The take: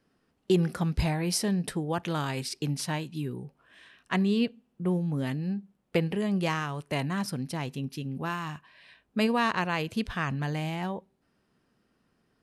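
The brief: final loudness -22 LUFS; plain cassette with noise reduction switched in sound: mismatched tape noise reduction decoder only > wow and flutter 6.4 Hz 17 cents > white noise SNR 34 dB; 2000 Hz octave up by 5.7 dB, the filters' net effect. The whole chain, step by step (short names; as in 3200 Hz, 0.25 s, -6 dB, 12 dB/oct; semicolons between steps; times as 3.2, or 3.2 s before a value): bell 2000 Hz +7 dB; mismatched tape noise reduction decoder only; wow and flutter 6.4 Hz 17 cents; white noise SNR 34 dB; gain +7 dB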